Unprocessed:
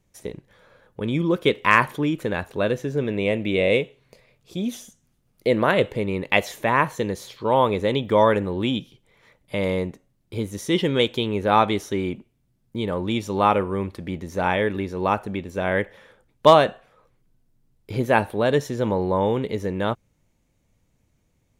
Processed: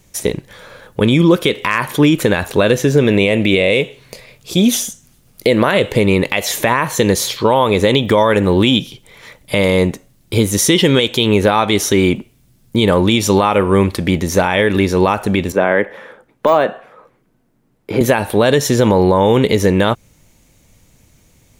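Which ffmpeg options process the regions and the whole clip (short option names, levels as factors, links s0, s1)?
-filter_complex "[0:a]asettb=1/sr,asplit=3[s0][s1][s2];[s0]atrim=end=15.524[s3];[s1]atrim=start=15.52:end=18.01,asetpts=PTS-STARTPTS,afade=t=in:d=0.004:c=qsin,afade=t=out:st=2.486:d=0.004:c=qsin,acrossover=split=170 2100:gain=0.126 1 0.158[s4][s5][s6];[s4][s5][s6]amix=inputs=3:normalize=0,deesser=0.8[s7];[s2]atrim=start=18.006[s8];[s3][s7]acrossfade=d=0.004:c1=hsin:c2=qsin[s9];[s9][s8]acrossfade=d=0.004:c1=qsin:c2=hsin,highshelf=f=2800:g=8.5,acompressor=threshold=0.0891:ratio=6,alimiter=level_in=6.31:limit=0.891:release=50:level=0:latency=1,volume=0.891"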